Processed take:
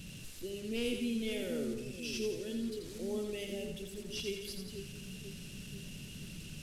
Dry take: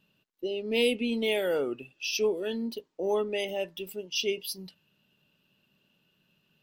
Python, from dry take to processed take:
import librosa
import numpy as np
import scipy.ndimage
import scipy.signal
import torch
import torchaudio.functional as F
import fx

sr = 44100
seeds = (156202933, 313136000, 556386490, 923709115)

y = fx.delta_mod(x, sr, bps=64000, step_db=-36.0)
y = fx.tone_stack(y, sr, knobs='10-0-1')
y = fx.echo_split(y, sr, split_hz=420.0, low_ms=489, high_ms=85, feedback_pct=52, wet_db=-5)
y = y * 10.0 ** (12.5 / 20.0)